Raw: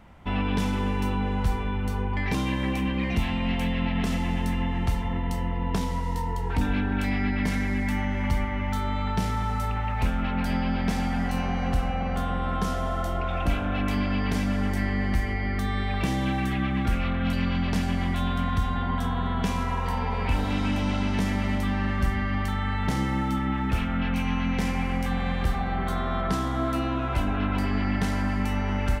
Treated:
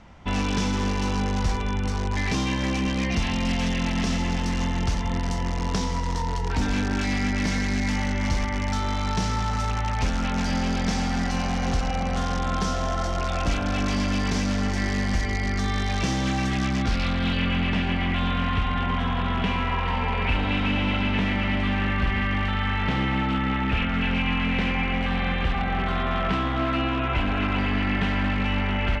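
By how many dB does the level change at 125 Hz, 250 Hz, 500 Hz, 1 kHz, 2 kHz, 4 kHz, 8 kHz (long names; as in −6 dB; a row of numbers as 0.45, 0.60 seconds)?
+1.0, +1.0, +2.0, +2.0, +4.5, +6.5, +7.5 decibels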